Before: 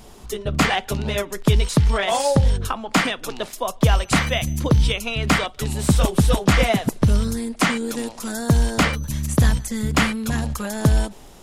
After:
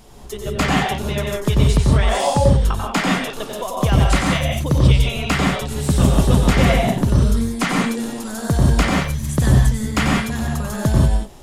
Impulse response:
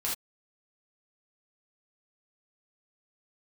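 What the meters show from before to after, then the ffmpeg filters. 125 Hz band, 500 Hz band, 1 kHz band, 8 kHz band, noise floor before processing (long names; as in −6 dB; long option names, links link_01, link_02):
+4.0 dB, +2.0 dB, +2.0 dB, 0.0 dB, −43 dBFS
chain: -filter_complex "[0:a]asplit=2[link_01][link_02];[link_02]tiltshelf=frequency=970:gain=3.5[link_03];[1:a]atrim=start_sample=2205,asetrate=35280,aresample=44100,adelay=91[link_04];[link_03][link_04]afir=irnorm=-1:irlink=0,volume=-5dB[link_05];[link_01][link_05]amix=inputs=2:normalize=0,volume=-2.5dB"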